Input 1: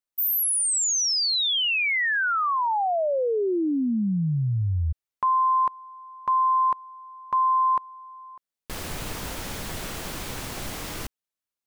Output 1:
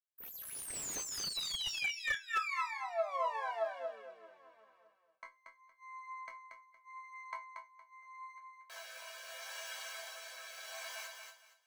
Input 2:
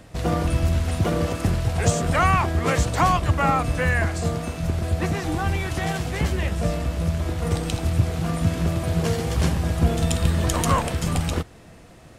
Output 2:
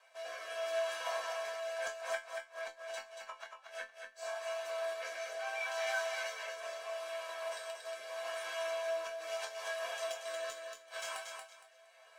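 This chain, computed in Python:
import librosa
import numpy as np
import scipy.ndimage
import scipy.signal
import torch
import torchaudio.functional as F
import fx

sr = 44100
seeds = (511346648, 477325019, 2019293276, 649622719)

p1 = fx.lower_of_two(x, sr, delay_ms=1.3)
p2 = scipy.signal.sosfilt(scipy.signal.butter(4, 760.0, 'highpass', fs=sr, output='sos'), p1)
p3 = fx.high_shelf(p2, sr, hz=4100.0, db=-10.5)
p4 = p3 + 0.62 * np.pad(p3, (int(1.8 * sr / 1000.0), 0))[:len(p3)]
p5 = fx.dynamic_eq(p4, sr, hz=6000.0, q=2.0, threshold_db=-52.0, ratio=4.0, max_db=5)
p6 = fx.gate_flip(p5, sr, shuts_db=-19.0, range_db=-37)
p7 = fx.chorus_voices(p6, sr, voices=2, hz=0.73, base_ms=23, depth_ms=1.9, mix_pct=30)
p8 = fx.resonator_bank(p7, sr, root=57, chord='minor', decay_s=0.21)
p9 = fx.rotary(p8, sr, hz=0.8)
p10 = p9 + fx.echo_feedback(p9, sr, ms=232, feedback_pct=24, wet_db=-5.5, dry=0)
p11 = fx.slew_limit(p10, sr, full_power_hz=16.0)
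y = F.gain(torch.from_numpy(p11), 13.0).numpy()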